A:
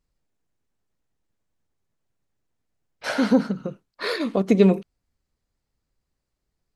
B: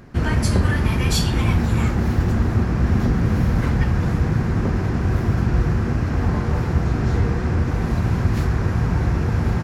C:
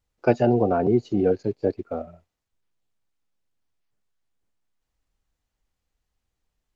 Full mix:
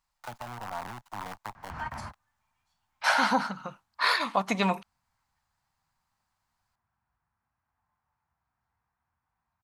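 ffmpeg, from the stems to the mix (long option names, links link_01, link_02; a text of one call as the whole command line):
ffmpeg -i stem1.wav -i stem2.wav -i stem3.wav -filter_complex "[0:a]volume=2.5dB[link_01];[1:a]highshelf=frequency=8300:gain=-9,adelay=1550,volume=0dB[link_02];[2:a]acrusher=bits=4:dc=4:mix=0:aa=0.000001,volume=-3.5dB,asplit=2[link_03][link_04];[link_04]apad=whole_len=493071[link_05];[link_02][link_05]sidechaingate=range=-54dB:threshold=-42dB:ratio=16:detection=peak[link_06];[link_06][link_03]amix=inputs=2:normalize=0,acrossover=split=100|200|1800[link_07][link_08][link_09][link_10];[link_07]acompressor=threshold=-31dB:ratio=4[link_11];[link_08]acompressor=threshold=-27dB:ratio=4[link_12];[link_09]acompressor=threshold=-32dB:ratio=4[link_13];[link_10]acompressor=threshold=-49dB:ratio=4[link_14];[link_11][link_12][link_13][link_14]amix=inputs=4:normalize=0,alimiter=limit=-22.5dB:level=0:latency=1:release=53,volume=0dB[link_15];[link_01][link_15]amix=inputs=2:normalize=0,lowshelf=frequency=610:width_type=q:width=3:gain=-13" out.wav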